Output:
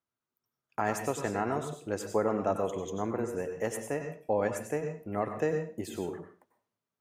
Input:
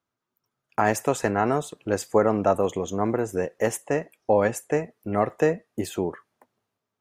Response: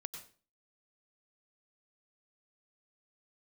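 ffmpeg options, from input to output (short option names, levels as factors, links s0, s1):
-filter_complex "[1:a]atrim=start_sample=2205[s0];[0:a][s0]afir=irnorm=-1:irlink=0,volume=0.562"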